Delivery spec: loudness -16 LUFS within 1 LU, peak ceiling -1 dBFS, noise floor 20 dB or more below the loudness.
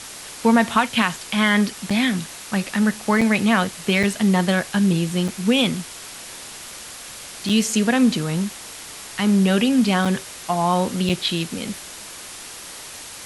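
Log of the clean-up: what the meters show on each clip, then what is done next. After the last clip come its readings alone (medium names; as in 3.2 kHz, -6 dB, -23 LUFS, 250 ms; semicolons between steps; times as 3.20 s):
dropouts 7; longest dropout 5.4 ms; noise floor -37 dBFS; noise floor target -40 dBFS; loudness -20.0 LUFS; peak level -4.5 dBFS; loudness target -16.0 LUFS
-> interpolate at 1.90/3.21/4.03/5.28/7.49/10.05/11.09 s, 5.4 ms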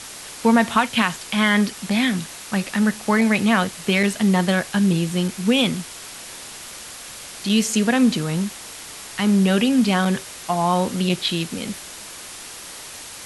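dropouts 0; noise floor -37 dBFS; noise floor target -40 dBFS
-> noise reduction 6 dB, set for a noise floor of -37 dBFS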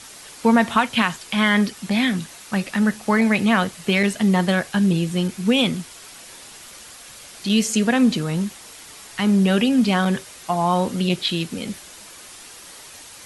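noise floor -42 dBFS; loudness -20.5 LUFS; peak level -4.5 dBFS; loudness target -16.0 LUFS
-> trim +4.5 dB; peak limiter -1 dBFS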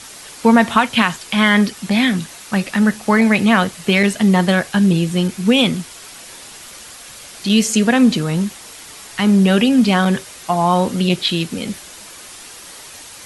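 loudness -16.0 LUFS; peak level -1.0 dBFS; noise floor -38 dBFS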